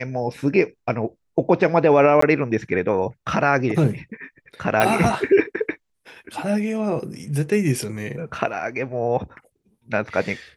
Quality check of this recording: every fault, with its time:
2.21–2.22 gap 14 ms
4.8 pop -6 dBFS

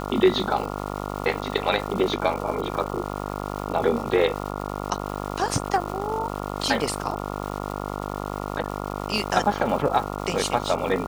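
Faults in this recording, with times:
buzz 50 Hz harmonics 28 -31 dBFS
crackle 480/s -33 dBFS

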